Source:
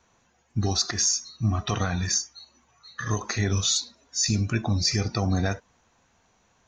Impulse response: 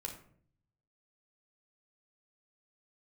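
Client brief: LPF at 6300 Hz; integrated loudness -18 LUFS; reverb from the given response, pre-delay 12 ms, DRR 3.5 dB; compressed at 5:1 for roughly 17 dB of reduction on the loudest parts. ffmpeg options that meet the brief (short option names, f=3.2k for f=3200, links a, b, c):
-filter_complex "[0:a]lowpass=6.3k,acompressor=threshold=-40dB:ratio=5,asplit=2[a][b];[1:a]atrim=start_sample=2205,adelay=12[c];[b][c]afir=irnorm=-1:irlink=0,volume=-2dB[d];[a][d]amix=inputs=2:normalize=0,volume=22dB"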